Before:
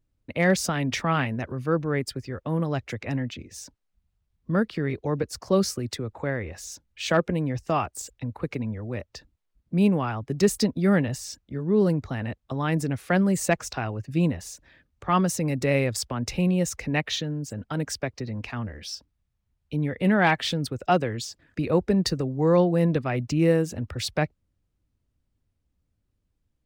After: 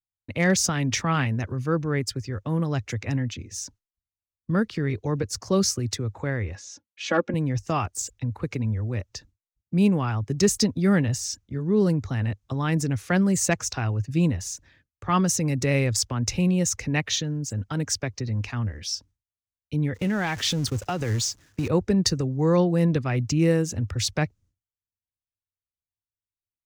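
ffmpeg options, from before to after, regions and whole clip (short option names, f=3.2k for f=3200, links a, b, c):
-filter_complex "[0:a]asettb=1/sr,asplit=3[a][b][c];[a]atrim=end=6.554[d];[b]atrim=start=6.55:end=7.34,asetpts=PTS-STARTPTS,afade=t=in:d=0.004:c=qsin,afade=t=out:st=0.786:d=0.004:c=qsin,highpass=200,lowpass=6k,highshelf=f=3.7k:g=-11,aecho=1:1:3.6:0.71,atrim=end_sample=34839[e];[c]atrim=start=7.336[f];[d][e]acrossfade=d=0.004:c1=hsin:c2=qsin[g];[g][f]acrossfade=d=0.004:c1=qsin:c2=hsin,asettb=1/sr,asplit=3[h][i][j];[h]atrim=end=19.944[k];[i]atrim=start=19.94:end=21.68,asetpts=PTS-STARTPTS,afade=t=in:d=0.004:c=qsin,afade=t=out:st=1.736:d=0.004:c=qsin,aeval=exprs='val(0)+0.5*0.0178*sgn(val(0))':c=same,agate=range=-19dB:threshold=-35dB:ratio=16:release=100:detection=peak,acompressor=threshold=-22dB:ratio=5:attack=3.2:release=140:knee=1:detection=peak[l];[j]atrim=start=21.676[m];[k][l]acrossfade=d=0.004:c1=hsin:c2=qsin[n];[n][m]acrossfade=d=0.004:c1=qsin:c2=hsin,agate=range=-33dB:threshold=-51dB:ratio=3:detection=peak,equalizer=f=100:t=o:w=0.67:g=9,equalizer=f=630:t=o:w=0.67:g=-4,equalizer=f=6.3k:t=o:w=0.67:g=9"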